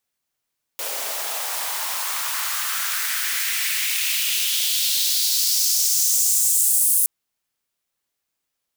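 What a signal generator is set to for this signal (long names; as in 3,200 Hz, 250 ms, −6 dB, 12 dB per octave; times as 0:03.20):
filter sweep on noise white, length 6.27 s highpass, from 530 Hz, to 10,000 Hz, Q 2.4, exponential, gain ramp +9 dB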